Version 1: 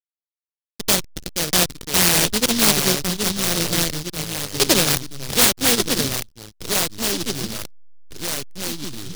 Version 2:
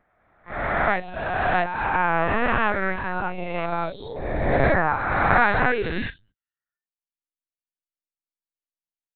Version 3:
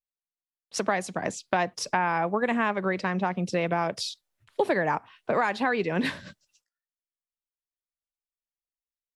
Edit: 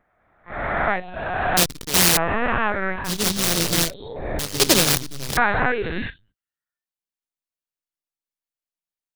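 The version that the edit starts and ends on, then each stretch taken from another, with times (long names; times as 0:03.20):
2
0:01.57–0:02.17: punch in from 1
0:03.08–0:03.89: punch in from 1, crossfade 0.10 s
0:04.39–0:05.37: punch in from 1
not used: 3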